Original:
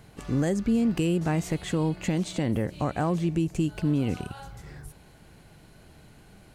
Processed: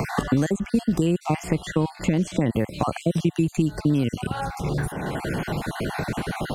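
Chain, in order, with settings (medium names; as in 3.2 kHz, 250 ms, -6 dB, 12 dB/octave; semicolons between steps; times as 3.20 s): random holes in the spectrogram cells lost 37%; three bands compressed up and down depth 100%; trim +5 dB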